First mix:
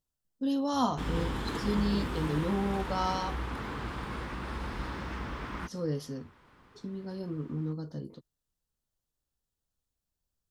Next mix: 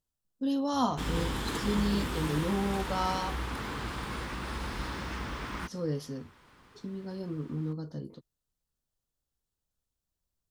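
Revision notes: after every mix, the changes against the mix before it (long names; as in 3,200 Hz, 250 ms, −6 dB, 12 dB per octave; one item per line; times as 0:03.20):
background: add high-shelf EQ 3,500 Hz +10 dB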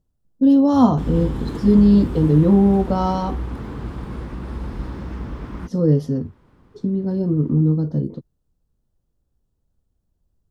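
speech +9.0 dB
master: add tilt shelving filter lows +10 dB, about 840 Hz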